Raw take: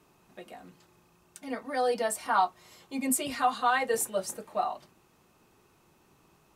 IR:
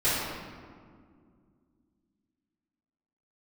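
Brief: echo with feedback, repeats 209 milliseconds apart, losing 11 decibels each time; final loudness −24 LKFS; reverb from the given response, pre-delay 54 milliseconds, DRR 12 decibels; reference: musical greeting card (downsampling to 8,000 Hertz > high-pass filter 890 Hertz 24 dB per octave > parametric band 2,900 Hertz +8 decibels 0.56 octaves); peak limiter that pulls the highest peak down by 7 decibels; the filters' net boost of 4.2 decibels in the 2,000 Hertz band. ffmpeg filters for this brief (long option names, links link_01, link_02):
-filter_complex "[0:a]equalizer=frequency=2000:width_type=o:gain=3.5,alimiter=limit=-19.5dB:level=0:latency=1,aecho=1:1:209|418|627:0.282|0.0789|0.0221,asplit=2[link_01][link_02];[1:a]atrim=start_sample=2205,adelay=54[link_03];[link_02][link_03]afir=irnorm=-1:irlink=0,volume=-25.5dB[link_04];[link_01][link_04]amix=inputs=2:normalize=0,aresample=8000,aresample=44100,highpass=frequency=890:width=0.5412,highpass=frequency=890:width=1.3066,equalizer=frequency=2900:width_type=o:width=0.56:gain=8,volume=9.5dB"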